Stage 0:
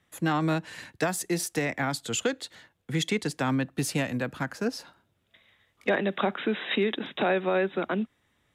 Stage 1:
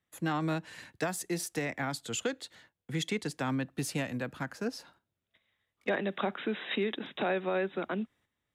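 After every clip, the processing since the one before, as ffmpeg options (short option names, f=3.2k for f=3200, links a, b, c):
-af "agate=range=-9dB:threshold=-56dB:ratio=16:detection=peak,volume=-5.5dB"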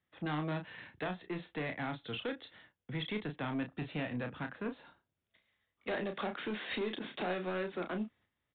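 -filter_complex "[0:a]aresample=8000,asoftclip=type=tanh:threshold=-30.5dB,aresample=44100,asplit=2[a][b];[b]adelay=33,volume=-7dB[c];[a][c]amix=inputs=2:normalize=0,volume=-1.5dB"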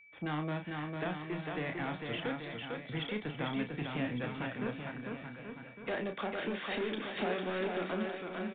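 -af "aresample=8000,aresample=44100,aecho=1:1:450|832.5|1158|1434|1669:0.631|0.398|0.251|0.158|0.1,aeval=exprs='val(0)+0.00158*sin(2*PI*2300*n/s)':c=same"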